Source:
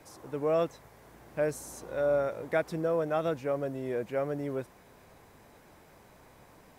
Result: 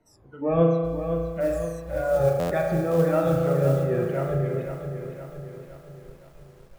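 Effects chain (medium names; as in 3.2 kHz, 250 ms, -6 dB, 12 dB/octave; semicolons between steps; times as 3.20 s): drifting ripple filter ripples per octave 1.9, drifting -2.9 Hz, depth 14 dB; RIAA curve playback; spring tank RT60 1.7 s, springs 36 ms, chirp 75 ms, DRR 0.5 dB; spectral noise reduction 17 dB; treble shelf 8.3 kHz +6.5 dB; 1.40–3.84 s: modulation noise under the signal 28 dB; buffer glitch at 2.39 s, samples 512, times 9; bit-crushed delay 515 ms, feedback 55%, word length 9-bit, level -8.5 dB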